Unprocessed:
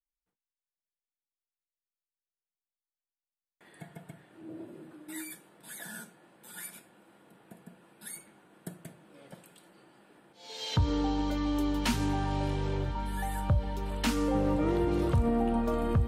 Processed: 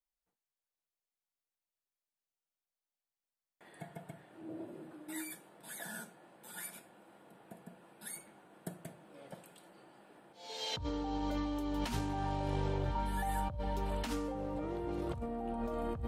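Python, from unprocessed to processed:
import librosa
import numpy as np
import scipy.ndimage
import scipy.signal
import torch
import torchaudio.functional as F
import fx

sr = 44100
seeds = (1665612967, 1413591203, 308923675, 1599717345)

y = fx.peak_eq(x, sr, hz=700.0, db=5.5, octaves=1.1)
y = fx.over_compress(y, sr, threshold_db=-31.0, ratio=-1.0)
y = y * 10.0 ** (-5.5 / 20.0)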